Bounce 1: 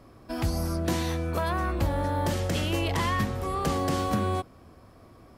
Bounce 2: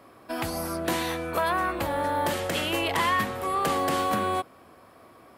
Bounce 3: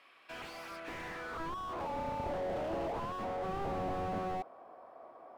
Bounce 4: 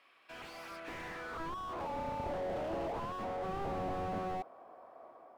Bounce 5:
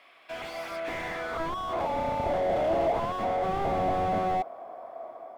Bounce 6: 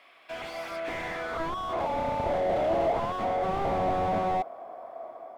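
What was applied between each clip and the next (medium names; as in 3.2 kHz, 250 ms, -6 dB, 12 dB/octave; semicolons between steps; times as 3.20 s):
high-pass 660 Hz 6 dB/octave; peaking EQ 5.7 kHz -8 dB 0.89 oct; trim +6.5 dB
band-pass sweep 2.7 kHz -> 710 Hz, 0.71–2.07 s; slew-rate limiter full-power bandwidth 6.6 Hz; trim +4.5 dB
level rider gain up to 3 dB; trim -4 dB
small resonant body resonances 670/2100/3400 Hz, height 9 dB, ringing for 25 ms; trim +7.5 dB
loudspeaker Doppler distortion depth 0.24 ms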